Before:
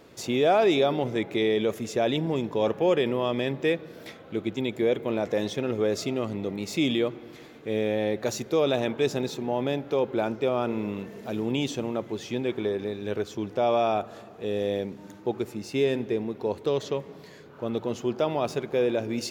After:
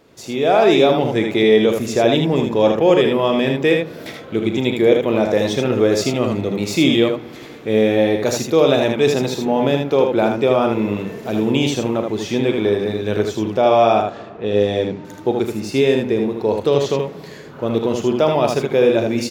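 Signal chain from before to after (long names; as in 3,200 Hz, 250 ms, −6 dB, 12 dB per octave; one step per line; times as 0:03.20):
0:13.62–0:15.05: low-pass that shuts in the quiet parts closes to 2,200 Hz, open at −19 dBFS
automatic gain control gain up to 11 dB
ambience of single reflections 37 ms −10.5 dB, 78 ms −4.5 dB
level −1 dB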